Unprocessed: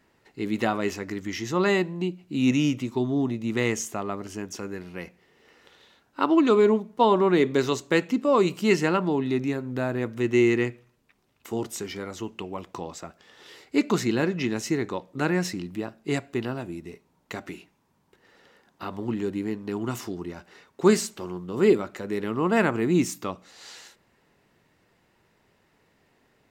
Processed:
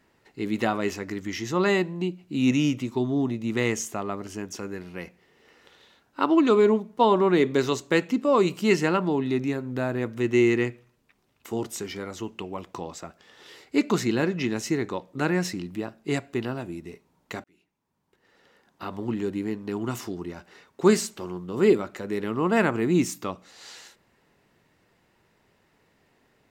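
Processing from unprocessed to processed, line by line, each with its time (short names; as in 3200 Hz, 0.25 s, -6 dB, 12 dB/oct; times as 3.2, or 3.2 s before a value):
17.44–18.92 fade in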